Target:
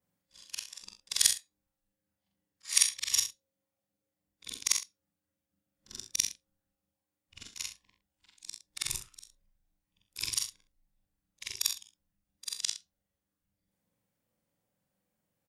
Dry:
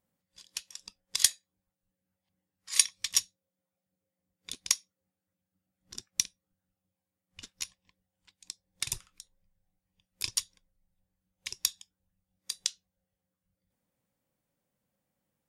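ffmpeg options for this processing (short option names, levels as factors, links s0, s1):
-af "afftfilt=real='re':imag='-im':win_size=4096:overlap=0.75,aecho=1:1:36|65:0.266|0.266,volume=1.58"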